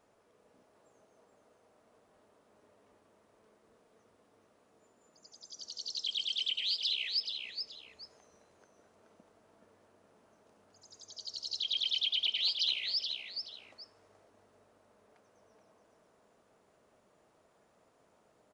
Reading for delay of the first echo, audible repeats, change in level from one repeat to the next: 426 ms, 2, −11.5 dB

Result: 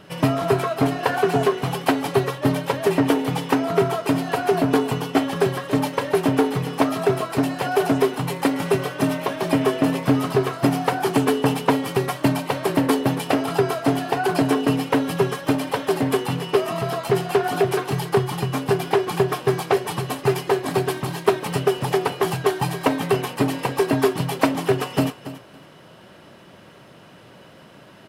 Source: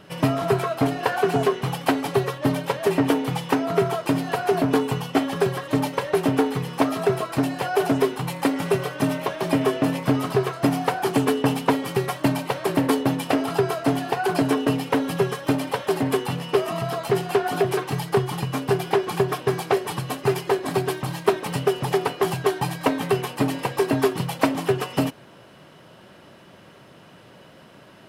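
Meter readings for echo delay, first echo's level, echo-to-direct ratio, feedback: 280 ms, −14.0 dB, −14.0 dB, 19%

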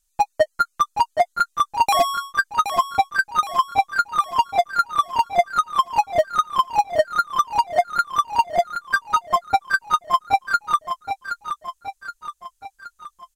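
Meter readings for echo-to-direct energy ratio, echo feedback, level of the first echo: −7.0 dB, 53%, −8.5 dB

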